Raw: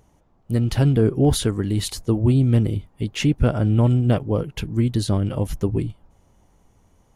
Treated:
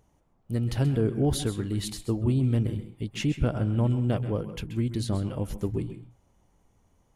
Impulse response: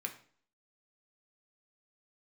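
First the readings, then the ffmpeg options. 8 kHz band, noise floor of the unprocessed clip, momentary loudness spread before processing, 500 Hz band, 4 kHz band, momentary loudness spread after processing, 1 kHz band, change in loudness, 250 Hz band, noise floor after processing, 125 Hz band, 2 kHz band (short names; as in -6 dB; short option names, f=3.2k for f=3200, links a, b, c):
-7.0 dB, -60 dBFS, 8 LU, -7.0 dB, -7.5 dB, 9 LU, -7.0 dB, -7.5 dB, -7.0 dB, -67 dBFS, -7.5 dB, -7.0 dB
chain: -filter_complex "[0:a]asplit=2[a][b];[1:a]atrim=start_sample=2205,atrim=end_sample=6615,adelay=130[c];[b][c]afir=irnorm=-1:irlink=0,volume=-9.5dB[d];[a][d]amix=inputs=2:normalize=0,volume=-7.5dB"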